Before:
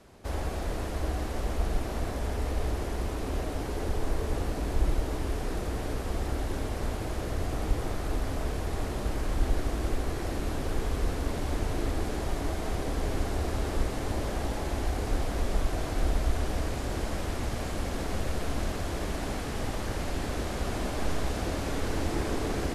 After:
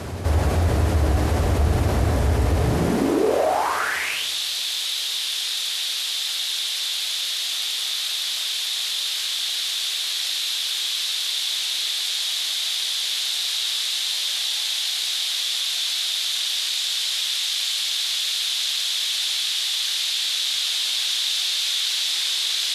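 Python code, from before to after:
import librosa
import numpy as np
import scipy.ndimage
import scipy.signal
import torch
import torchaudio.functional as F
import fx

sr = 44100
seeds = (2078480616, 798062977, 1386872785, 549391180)

y = fx.filter_sweep_highpass(x, sr, from_hz=85.0, to_hz=3600.0, start_s=2.5, end_s=4.29, q=4.8)
y = fx.room_shoebox(y, sr, seeds[0], volume_m3=1100.0, walls='mixed', distance_m=0.3)
y = fx.env_flatten(y, sr, amount_pct=50)
y = y * 10.0 ** (7.0 / 20.0)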